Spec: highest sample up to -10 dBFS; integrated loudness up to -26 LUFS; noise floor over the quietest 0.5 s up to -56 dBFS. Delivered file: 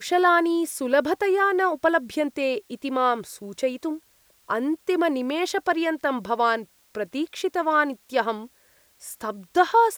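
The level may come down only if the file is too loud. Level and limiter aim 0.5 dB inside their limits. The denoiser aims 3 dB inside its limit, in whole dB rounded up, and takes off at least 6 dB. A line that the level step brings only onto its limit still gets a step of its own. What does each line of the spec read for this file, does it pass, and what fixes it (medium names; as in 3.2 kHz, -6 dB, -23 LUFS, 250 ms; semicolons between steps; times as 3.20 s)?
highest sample -6.0 dBFS: fail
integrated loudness -24.0 LUFS: fail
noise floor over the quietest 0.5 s -60 dBFS: pass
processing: trim -2.5 dB; peak limiter -10.5 dBFS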